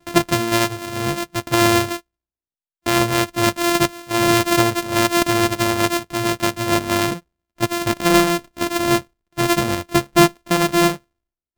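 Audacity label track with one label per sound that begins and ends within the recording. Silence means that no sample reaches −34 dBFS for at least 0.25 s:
2.860000	7.190000	sound
7.580000	9.020000	sound
9.370000	10.970000	sound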